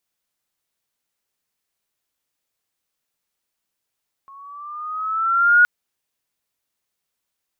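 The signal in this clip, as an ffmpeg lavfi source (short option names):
-f lavfi -i "aevalsrc='pow(10,(-8+32*(t/1.37-1))/20)*sin(2*PI*1090*1.37/(5*log(2)/12)*(exp(5*log(2)/12*t/1.37)-1))':d=1.37:s=44100"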